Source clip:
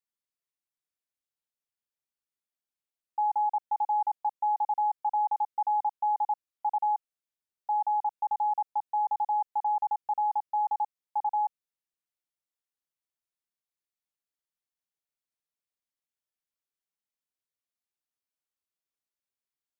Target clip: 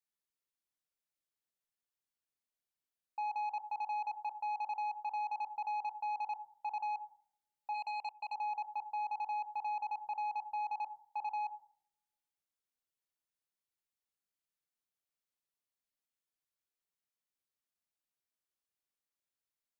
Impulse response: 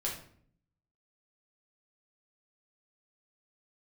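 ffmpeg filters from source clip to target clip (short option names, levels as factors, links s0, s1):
-filter_complex "[0:a]asplit=2[s0][s1];[1:a]atrim=start_sample=2205,adelay=21[s2];[s1][s2]afir=irnorm=-1:irlink=0,volume=0.2[s3];[s0][s3]amix=inputs=2:normalize=0,asplit=3[s4][s5][s6];[s4]afade=t=out:st=7.73:d=0.02[s7];[s5]aeval=exprs='0.0841*(cos(1*acos(clip(val(0)/0.0841,-1,1)))-cos(1*PI/2))+0.0335*(cos(3*acos(clip(val(0)/0.0841,-1,1)))-cos(3*PI/2))+0.000944*(cos(7*acos(clip(val(0)/0.0841,-1,1)))-cos(7*PI/2))':c=same,afade=t=in:st=7.73:d=0.02,afade=t=out:st=8.34:d=0.02[s8];[s6]afade=t=in:st=8.34:d=0.02[s9];[s7][s8][s9]amix=inputs=3:normalize=0,asoftclip=type=tanh:threshold=0.0422,alimiter=level_in=2.37:limit=0.0631:level=0:latency=1:release=96,volume=0.422,volume=0.75"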